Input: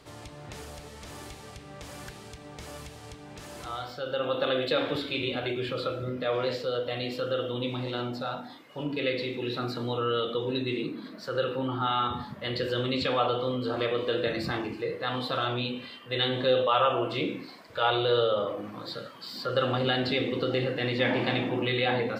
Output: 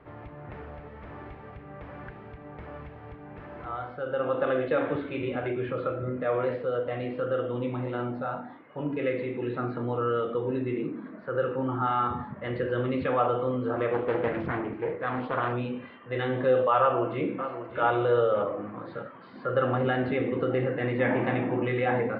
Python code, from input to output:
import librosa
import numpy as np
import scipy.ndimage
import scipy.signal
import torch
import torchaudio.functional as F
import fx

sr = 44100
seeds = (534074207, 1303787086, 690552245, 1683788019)

y = fx.air_absorb(x, sr, metres=110.0, at=(9.85, 11.67))
y = fx.doppler_dist(y, sr, depth_ms=0.7, at=(13.93, 15.53))
y = fx.echo_throw(y, sr, start_s=16.79, length_s=1.05, ms=590, feedback_pct=35, wet_db=-10.5)
y = scipy.signal.sosfilt(scipy.signal.butter(4, 2000.0, 'lowpass', fs=sr, output='sos'), y)
y = F.gain(torch.from_numpy(y), 1.5).numpy()